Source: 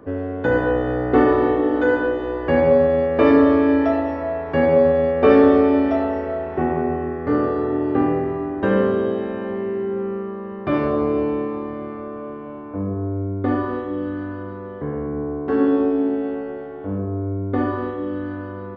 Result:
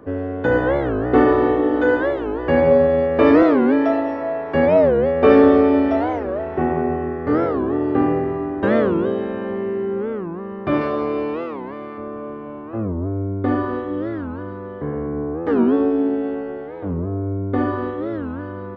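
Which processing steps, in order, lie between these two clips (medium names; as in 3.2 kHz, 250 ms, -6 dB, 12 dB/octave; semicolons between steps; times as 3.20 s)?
3.43–4.55 s: high-pass 170 Hz 12 dB/octave; 10.81–11.98 s: tilt EQ +2.5 dB/octave; warped record 45 rpm, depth 250 cents; trim +1 dB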